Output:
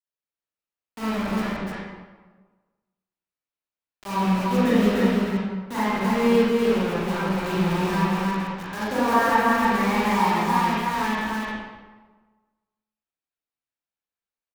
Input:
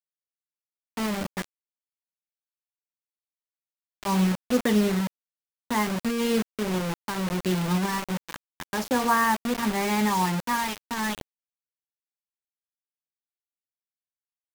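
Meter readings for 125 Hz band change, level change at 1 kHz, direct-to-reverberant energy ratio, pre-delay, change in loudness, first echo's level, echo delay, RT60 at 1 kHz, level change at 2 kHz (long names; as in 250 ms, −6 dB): +3.0 dB, +5.0 dB, −12.0 dB, 33 ms, +3.5 dB, −2.0 dB, 299 ms, 1.3 s, +4.0 dB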